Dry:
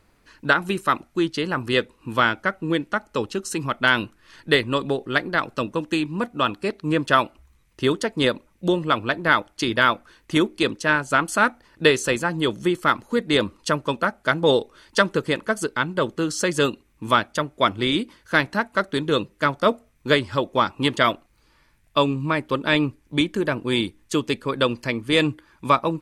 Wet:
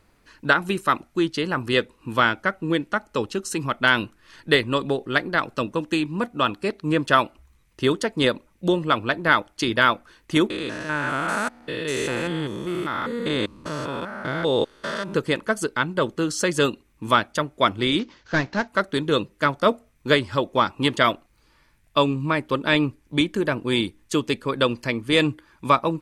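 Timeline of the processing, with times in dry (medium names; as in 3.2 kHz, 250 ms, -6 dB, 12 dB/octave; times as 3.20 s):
10.50–15.14 s: spectrogram pixelated in time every 200 ms
17.99–18.68 s: CVSD coder 32 kbps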